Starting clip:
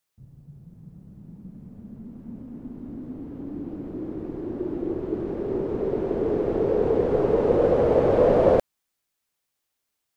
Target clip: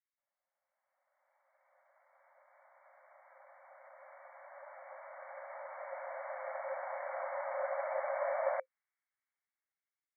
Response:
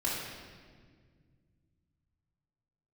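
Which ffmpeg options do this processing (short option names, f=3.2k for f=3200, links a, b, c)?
-af "afftfilt=real='re*between(b*sr/4096,520,2300)':imag='im*between(b*sr/4096,520,2300)':win_size=4096:overlap=0.75,dynaudnorm=f=470:g=5:m=14dB,aderivative"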